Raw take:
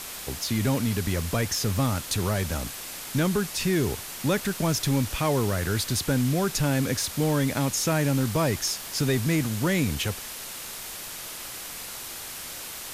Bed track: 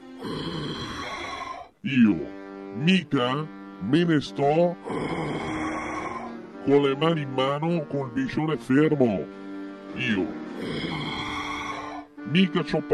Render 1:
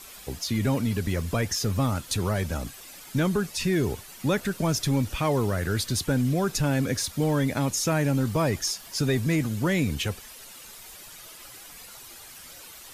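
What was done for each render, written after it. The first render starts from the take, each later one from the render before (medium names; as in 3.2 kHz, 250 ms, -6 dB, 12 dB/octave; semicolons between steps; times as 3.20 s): noise reduction 11 dB, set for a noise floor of -38 dBFS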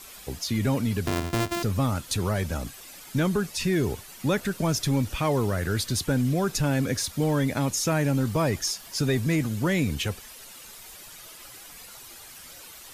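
1.07–1.63 s: sorted samples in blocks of 128 samples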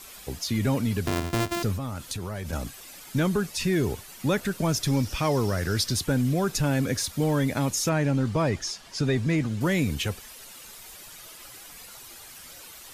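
1.75–2.53 s: compression 10:1, threshold -28 dBFS; 4.87–5.94 s: peaking EQ 5.3 kHz +10.5 dB 0.32 oct; 7.89–9.61 s: distance through air 67 m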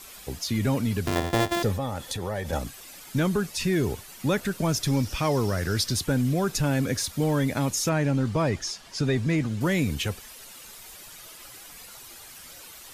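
1.15–2.59 s: small resonant body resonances 530/790/1800/3400 Hz, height 10 dB, ringing for 20 ms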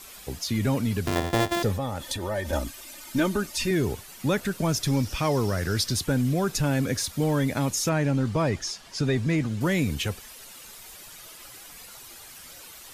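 2.01–3.71 s: comb 3.3 ms, depth 69%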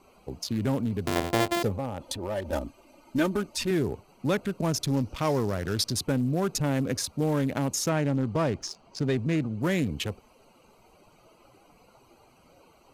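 local Wiener filter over 25 samples; bass shelf 93 Hz -10 dB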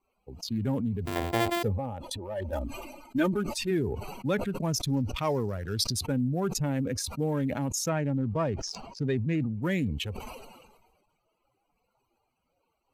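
expander on every frequency bin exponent 1.5; decay stretcher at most 42 dB/s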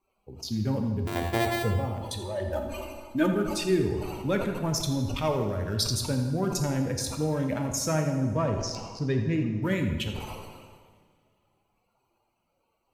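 filtered feedback delay 83 ms, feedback 71%, low-pass 2.7 kHz, level -10 dB; two-slope reverb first 0.94 s, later 2.7 s, from -18 dB, DRR 4.5 dB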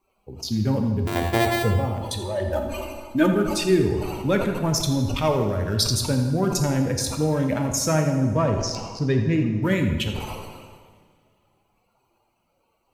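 trim +5.5 dB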